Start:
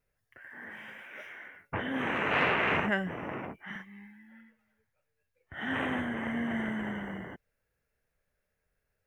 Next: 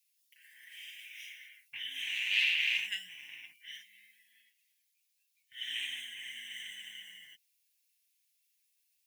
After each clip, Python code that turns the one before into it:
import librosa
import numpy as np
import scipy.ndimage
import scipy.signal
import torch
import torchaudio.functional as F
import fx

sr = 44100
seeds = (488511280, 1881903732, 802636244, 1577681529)

y = scipy.signal.sosfilt(scipy.signal.cheby2(4, 40, 1400.0, 'highpass', fs=sr, output='sos'), x)
y = fx.tilt_eq(y, sr, slope=1.5)
y = y + 0.48 * np.pad(y, (int(6.7 * sr / 1000.0), 0))[:len(y)]
y = y * 10.0 ** (7.0 / 20.0)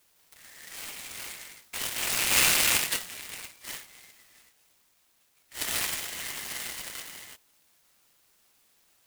y = fx.peak_eq(x, sr, hz=13000.0, db=10.0, octaves=0.63)
y = 10.0 ** (-21.0 / 20.0) * np.tanh(y / 10.0 ** (-21.0 / 20.0))
y = fx.noise_mod_delay(y, sr, seeds[0], noise_hz=5600.0, depth_ms=0.085)
y = y * 10.0 ** (8.0 / 20.0)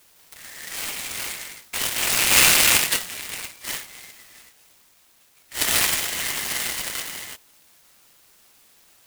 y = fx.rider(x, sr, range_db=3, speed_s=2.0)
y = y * 10.0 ** (7.0 / 20.0)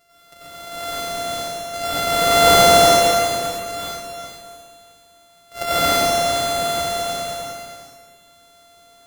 y = np.r_[np.sort(x[:len(x) // 64 * 64].reshape(-1, 64), axis=1).ravel(), x[len(x) // 64 * 64:]]
y = y + 10.0 ** (-10.0 / 20.0) * np.pad(y, (int(409 * sr / 1000.0), 0))[:len(y)]
y = fx.rev_plate(y, sr, seeds[1], rt60_s=1.5, hf_ratio=0.85, predelay_ms=80, drr_db=-9.5)
y = y * 10.0 ** (-4.5 / 20.0)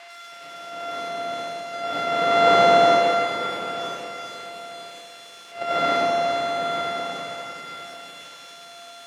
y = x + 0.5 * 10.0 ** (-17.5 / 20.0) * np.diff(np.sign(x), prepend=np.sign(x[:1]))
y = fx.bandpass_edges(y, sr, low_hz=200.0, high_hz=2500.0)
y = fx.echo_feedback(y, sr, ms=941, feedback_pct=25, wet_db=-13.0)
y = y * 10.0 ** (-2.5 / 20.0)